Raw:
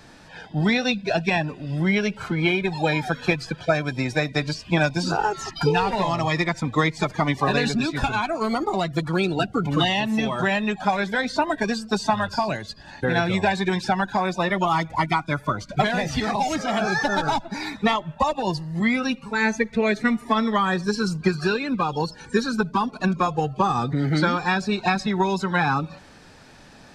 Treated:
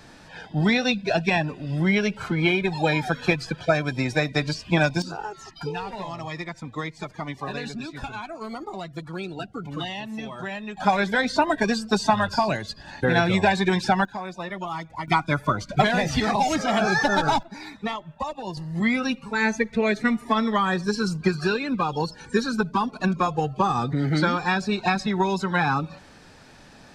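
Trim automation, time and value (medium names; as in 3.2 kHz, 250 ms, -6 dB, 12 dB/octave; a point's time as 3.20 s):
0 dB
from 5.02 s -10.5 dB
from 10.77 s +1.5 dB
from 14.05 s -10 dB
from 15.08 s +1.5 dB
from 17.43 s -8.5 dB
from 18.57 s -1 dB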